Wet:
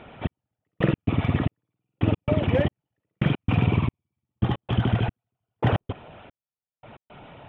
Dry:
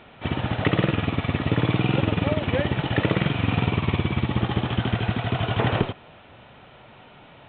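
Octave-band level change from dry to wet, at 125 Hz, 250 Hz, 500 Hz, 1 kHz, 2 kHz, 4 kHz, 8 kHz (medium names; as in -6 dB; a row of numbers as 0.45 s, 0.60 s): -1.5 dB, -2.5 dB, -2.5 dB, -4.5 dB, -6.5 dB, -8.0 dB, no reading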